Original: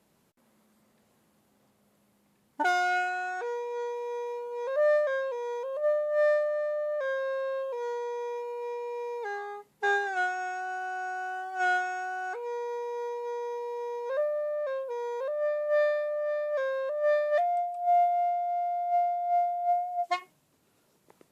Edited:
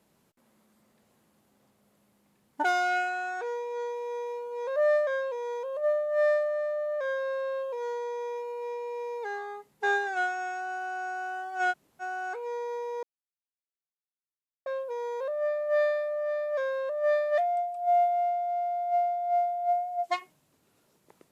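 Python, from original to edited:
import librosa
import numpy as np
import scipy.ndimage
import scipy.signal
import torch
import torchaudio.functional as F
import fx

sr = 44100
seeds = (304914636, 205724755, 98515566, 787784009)

y = fx.edit(x, sr, fx.room_tone_fill(start_s=11.72, length_s=0.29, crossfade_s=0.04),
    fx.silence(start_s=13.03, length_s=1.63), tone=tone)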